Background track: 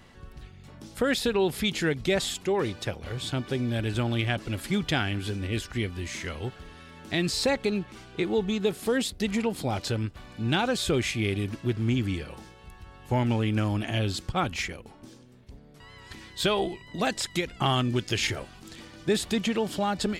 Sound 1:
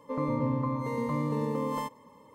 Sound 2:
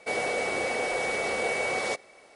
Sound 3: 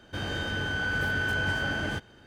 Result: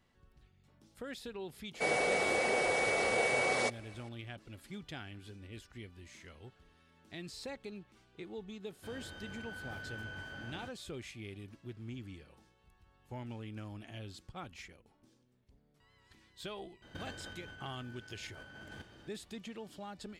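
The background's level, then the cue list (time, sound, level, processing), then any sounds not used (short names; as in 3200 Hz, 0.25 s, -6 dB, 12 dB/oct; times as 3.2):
background track -19 dB
1.74 add 2 -2.5 dB
8.7 add 3 -17.5 dB
16.82 add 3 -12.5 dB + negative-ratio compressor -36 dBFS, ratio -0.5
not used: 1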